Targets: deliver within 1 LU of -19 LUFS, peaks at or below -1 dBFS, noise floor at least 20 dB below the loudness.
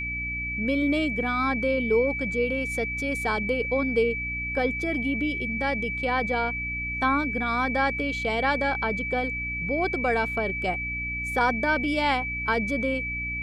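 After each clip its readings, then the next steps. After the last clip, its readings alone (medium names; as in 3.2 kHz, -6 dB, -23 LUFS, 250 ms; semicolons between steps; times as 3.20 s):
hum 60 Hz; highest harmonic 300 Hz; hum level -35 dBFS; steady tone 2.3 kHz; tone level -29 dBFS; loudness -25.5 LUFS; peak level -12.0 dBFS; loudness target -19.0 LUFS
-> de-hum 60 Hz, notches 5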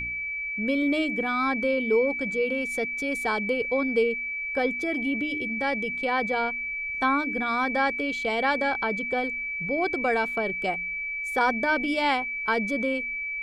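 hum not found; steady tone 2.3 kHz; tone level -29 dBFS
-> band-stop 2.3 kHz, Q 30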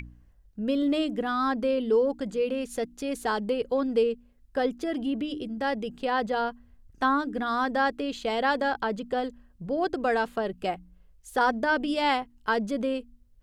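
steady tone not found; loudness -28.0 LUFS; peak level -13.0 dBFS; loudness target -19.0 LUFS
-> trim +9 dB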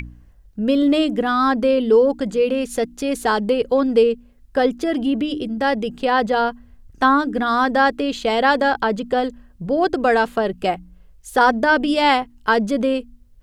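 loudness -19.0 LUFS; peak level -4.0 dBFS; noise floor -50 dBFS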